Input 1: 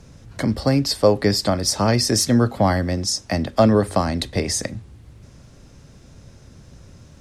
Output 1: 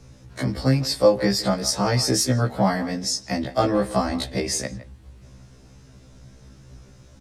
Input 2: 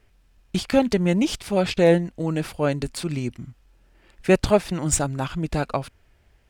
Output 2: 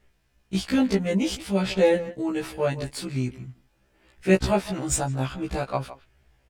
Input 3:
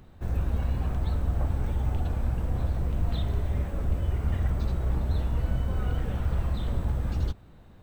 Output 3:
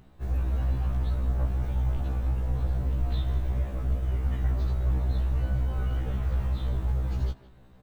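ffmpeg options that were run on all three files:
-filter_complex "[0:a]asplit=2[a][b];[b]adelay=160,highpass=300,lowpass=3.4k,asoftclip=type=hard:threshold=-11dB,volume=-14dB[c];[a][c]amix=inputs=2:normalize=0,afftfilt=real='re*1.73*eq(mod(b,3),0)':imag='im*1.73*eq(mod(b,3),0)':win_size=2048:overlap=0.75"

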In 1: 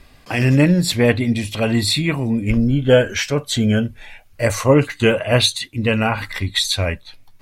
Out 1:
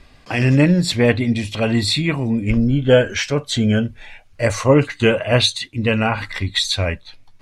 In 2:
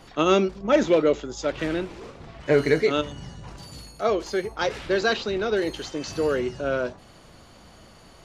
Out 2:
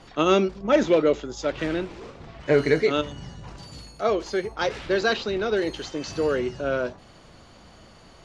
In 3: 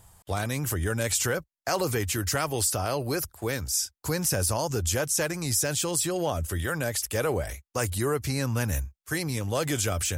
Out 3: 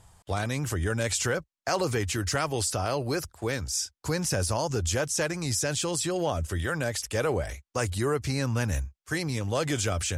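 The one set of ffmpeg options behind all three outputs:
-af "lowpass=7.7k"

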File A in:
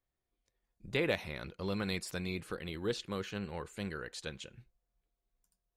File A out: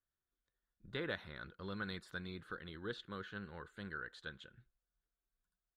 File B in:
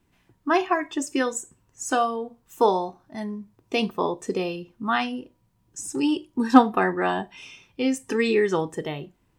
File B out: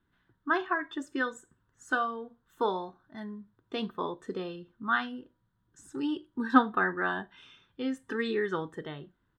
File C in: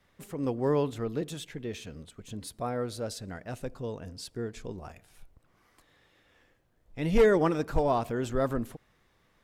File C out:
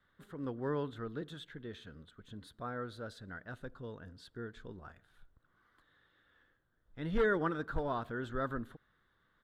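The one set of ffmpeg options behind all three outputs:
-af "firequalizer=gain_entry='entry(310,0);entry(740,-4);entry(1500,11);entry(2400,-9);entry(3500,4);entry(5300,-12)':delay=0.05:min_phase=1,volume=-8.5dB"

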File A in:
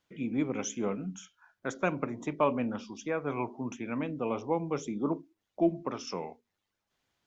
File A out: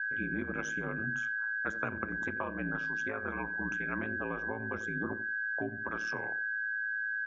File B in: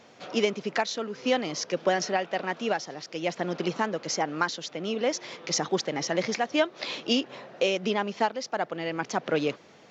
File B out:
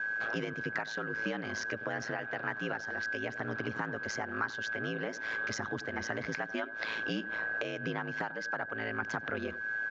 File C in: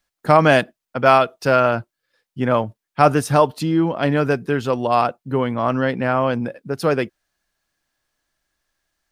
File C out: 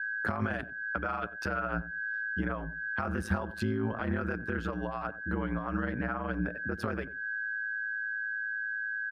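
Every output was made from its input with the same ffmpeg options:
-filter_complex "[0:a]highshelf=f=3.7k:g=-7,aeval=exprs='val(0)+0.00891*sin(2*PI*1600*n/s)':c=same,asplit=2[a][b];[b]acompressor=threshold=-29dB:ratio=6,volume=-3dB[c];[a][c]amix=inputs=2:normalize=0,alimiter=limit=-12.5dB:level=0:latency=1:release=29,acrossover=split=230[d][e];[e]acompressor=threshold=-32dB:ratio=4[f];[d][f]amix=inputs=2:normalize=0,equalizer=f=1.5k:t=o:w=0.97:g=12.5,aeval=exprs='val(0)*sin(2*PI*55*n/s)':c=same,asplit=2[g][h];[h]adelay=91,lowpass=f=810:p=1,volume=-14.5dB,asplit=2[i][j];[j]adelay=91,lowpass=f=810:p=1,volume=0.16[k];[g][i][k]amix=inputs=3:normalize=0,volume=-4.5dB"

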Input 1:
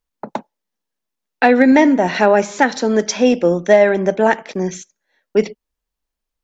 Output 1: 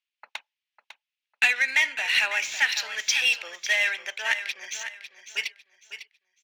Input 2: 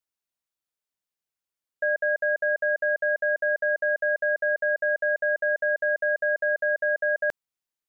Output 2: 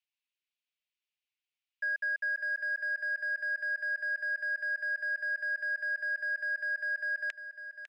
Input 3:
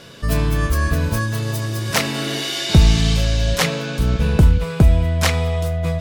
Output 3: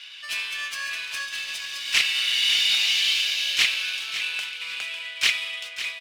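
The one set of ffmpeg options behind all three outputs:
-filter_complex "[0:a]highpass=f=2.6k:t=q:w=2.7,asplit=2[a][b];[b]highpass=f=720:p=1,volume=12dB,asoftclip=type=tanh:threshold=-2dB[c];[a][c]amix=inputs=2:normalize=0,lowpass=f=7.5k:p=1,volume=-6dB,adynamicsmooth=sensitivity=3:basefreq=4.9k,asplit=2[d][e];[e]aecho=0:1:551|1102|1653:0.282|0.0761|0.0205[f];[d][f]amix=inputs=2:normalize=0,volume=-7dB"

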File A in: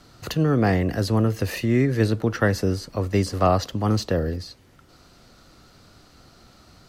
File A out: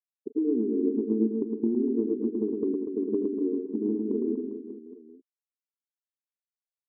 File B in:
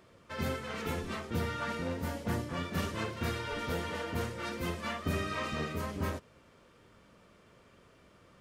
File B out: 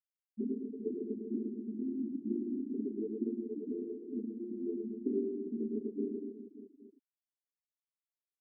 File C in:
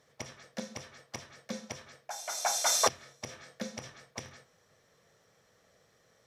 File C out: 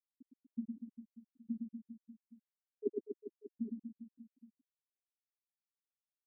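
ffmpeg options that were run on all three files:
-af "afftfilt=real='re*between(b*sr/4096,210,460)':imag='im*between(b*sr/4096,210,460)':win_size=4096:overlap=0.75,agate=range=-33dB:threshold=-53dB:ratio=3:detection=peak,afftfilt=real='re*gte(hypot(re,im),0.0562)':imag='im*gte(hypot(re,im),0.0562)':win_size=1024:overlap=0.75,acompressor=threshold=-30dB:ratio=6,aecho=1:1:110|242|400.4|590.5|818.6:0.631|0.398|0.251|0.158|0.1,volume=5dB"

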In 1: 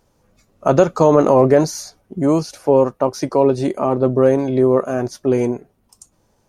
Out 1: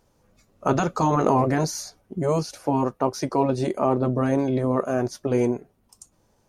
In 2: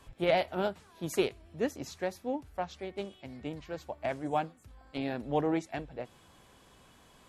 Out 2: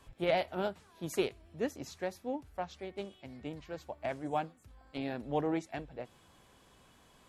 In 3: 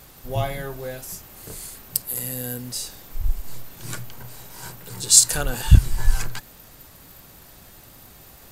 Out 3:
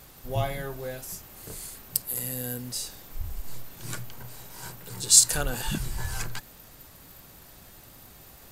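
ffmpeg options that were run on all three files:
-af "afftfilt=real='re*lt(hypot(re,im),1.41)':imag='im*lt(hypot(re,im),1.41)':win_size=1024:overlap=0.75,volume=-3dB"

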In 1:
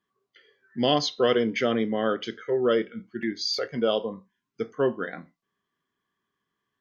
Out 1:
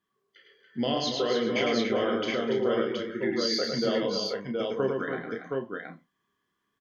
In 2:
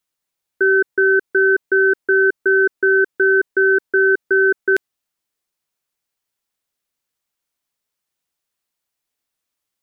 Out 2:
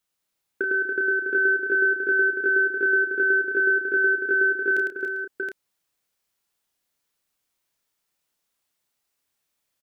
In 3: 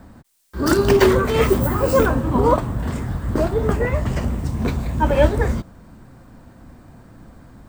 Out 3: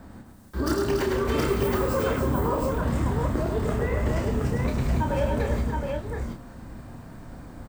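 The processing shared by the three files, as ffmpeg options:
-filter_complex "[0:a]acompressor=threshold=-23dB:ratio=12,asplit=2[a][b];[b]adelay=30,volume=-6dB[c];[a][c]amix=inputs=2:normalize=0,asplit=2[d][e];[e]aecho=0:1:104|243|283|397|721:0.631|0.126|0.447|0.141|0.708[f];[d][f]amix=inputs=2:normalize=0,volume=-1.5dB"

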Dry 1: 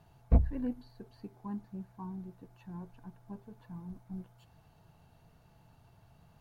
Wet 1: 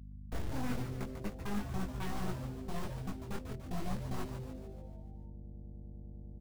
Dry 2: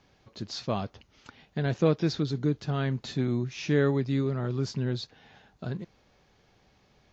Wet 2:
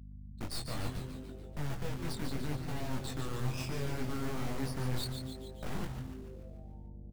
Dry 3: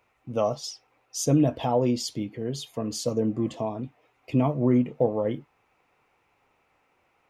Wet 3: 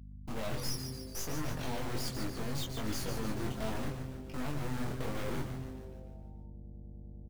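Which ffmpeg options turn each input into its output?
-filter_complex "[0:a]afftdn=nr=16:nf=-37,agate=range=-42dB:threshold=-49dB:ratio=16:detection=peak,highshelf=f=4.4k:g=-3.5,acrossover=split=200|6300[a][b][c];[a]acompressor=threshold=-29dB:ratio=4[d];[b]acompressor=threshold=-33dB:ratio=4[e];[c]acompressor=threshold=-45dB:ratio=4[f];[d][e][f]amix=inputs=3:normalize=0,alimiter=level_in=0.5dB:limit=-24dB:level=0:latency=1:release=39,volume=-0.5dB,areverse,acompressor=threshold=-45dB:ratio=12,areverse,acrusher=bits=3:mode=log:mix=0:aa=0.000001,aeval=exprs='0.0112*(cos(1*acos(clip(val(0)/0.0112,-1,1)))-cos(1*PI/2))+0.000126*(cos(5*acos(clip(val(0)/0.0112,-1,1)))-cos(5*PI/2))+0.000141*(cos(7*acos(clip(val(0)/0.0112,-1,1)))-cos(7*PI/2))+0.00447*(cos(8*acos(clip(val(0)/0.0112,-1,1)))-cos(8*PI/2))':c=same,flanger=delay=19:depth=4.4:speed=0.71,aeval=exprs='val(0)+0.00141*(sin(2*PI*50*n/s)+sin(2*PI*2*50*n/s)/2+sin(2*PI*3*50*n/s)/3+sin(2*PI*4*50*n/s)/4+sin(2*PI*5*50*n/s)/5)':c=same,asplit=8[g][h][i][j][k][l][m][n];[h]adelay=145,afreqshift=-130,volume=-7dB[o];[i]adelay=290,afreqshift=-260,volume=-11.9dB[p];[j]adelay=435,afreqshift=-390,volume=-16.8dB[q];[k]adelay=580,afreqshift=-520,volume=-21.6dB[r];[l]adelay=725,afreqshift=-650,volume=-26.5dB[s];[m]adelay=870,afreqshift=-780,volume=-31.4dB[t];[n]adelay=1015,afreqshift=-910,volume=-36.3dB[u];[g][o][p][q][r][s][t][u]amix=inputs=8:normalize=0,volume=10dB"

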